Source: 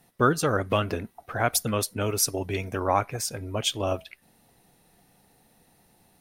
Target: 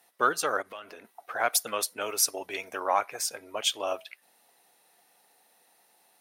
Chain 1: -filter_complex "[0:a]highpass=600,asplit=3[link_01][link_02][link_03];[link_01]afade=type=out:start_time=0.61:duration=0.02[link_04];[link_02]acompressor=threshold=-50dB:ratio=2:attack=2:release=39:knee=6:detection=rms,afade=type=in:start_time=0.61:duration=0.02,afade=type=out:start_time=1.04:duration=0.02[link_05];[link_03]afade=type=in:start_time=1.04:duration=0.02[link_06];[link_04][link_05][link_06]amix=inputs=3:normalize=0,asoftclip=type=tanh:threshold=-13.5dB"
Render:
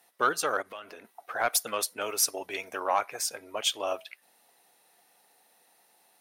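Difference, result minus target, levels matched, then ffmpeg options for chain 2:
soft clipping: distortion +11 dB
-filter_complex "[0:a]highpass=600,asplit=3[link_01][link_02][link_03];[link_01]afade=type=out:start_time=0.61:duration=0.02[link_04];[link_02]acompressor=threshold=-50dB:ratio=2:attack=2:release=39:knee=6:detection=rms,afade=type=in:start_time=0.61:duration=0.02,afade=type=out:start_time=1.04:duration=0.02[link_05];[link_03]afade=type=in:start_time=1.04:duration=0.02[link_06];[link_04][link_05][link_06]amix=inputs=3:normalize=0,asoftclip=type=tanh:threshold=-7dB"

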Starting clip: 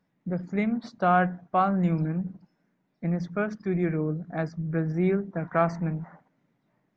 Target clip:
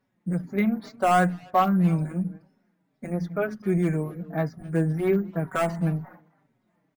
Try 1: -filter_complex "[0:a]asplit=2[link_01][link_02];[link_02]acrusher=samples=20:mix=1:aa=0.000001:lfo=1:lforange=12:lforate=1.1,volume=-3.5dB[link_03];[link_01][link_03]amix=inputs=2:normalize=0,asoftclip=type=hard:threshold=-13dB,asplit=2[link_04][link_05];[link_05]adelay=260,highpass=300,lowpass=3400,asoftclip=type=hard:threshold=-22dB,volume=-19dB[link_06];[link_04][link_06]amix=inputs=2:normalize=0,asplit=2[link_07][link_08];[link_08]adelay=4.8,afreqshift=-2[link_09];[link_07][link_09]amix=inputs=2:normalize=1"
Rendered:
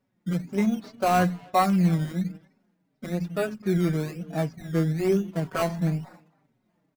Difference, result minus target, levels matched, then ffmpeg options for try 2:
sample-and-hold swept by an LFO: distortion +15 dB
-filter_complex "[0:a]asplit=2[link_01][link_02];[link_02]acrusher=samples=4:mix=1:aa=0.000001:lfo=1:lforange=2.4:lforate=1.1,volume=-3.5dB[link_03];[link_01][link_03]amix=inputs=2:normalize=0,asoftclip=type=hard:threshold=-13dB,asplit=2[link_04][link_05];[link_05]adelay=260,highpass=300,lowpass=3400,asoftclip=type=hard:threshold=-22dB,volume=-19dB[link_06];[link_04][link_06]amix=inputs=2:normalize=0,asplit=2[link_07][link_08];[link_08]adelay=4.8,afreqshift=-2[link_09];[link_07][link_09]amix=inputs=2:normalize=1"

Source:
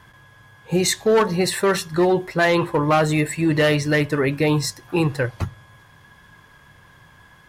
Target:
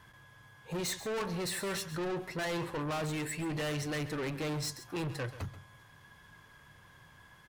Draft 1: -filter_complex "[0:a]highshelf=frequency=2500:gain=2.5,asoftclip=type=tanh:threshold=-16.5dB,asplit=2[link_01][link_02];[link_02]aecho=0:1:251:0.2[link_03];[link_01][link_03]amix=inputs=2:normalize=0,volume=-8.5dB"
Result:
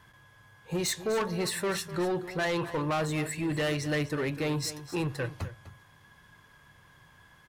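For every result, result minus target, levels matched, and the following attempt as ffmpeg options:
echo 117 ms late; soft clipping: distortion −7 dB
-filter_complex "[0:a]highshelf=frequency=2500:gain=2.5,asoftclip=type=tanh:threshold=-16.5dB,asplit=2[link_01][link_02];[link_02]aecho=0:1:134:0.2[link_03];[link_01][link_03]amix=inputs=2:normalize=0,volume=-8.5dB"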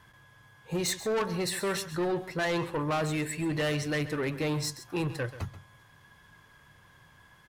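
soft clipping: distortion −7 dB
-filter_complex "[0:a]highshelf=frequency=2500:gain=2.5,asoftclip=type=tanh:threshold=-24.5dB,asplit=2[link_01][link_02];[link_02]aecho=0:1:134:0.2[link_03];[link_01][link_03]amix=inputs=2:normalize=0,volume=-8.5dB"

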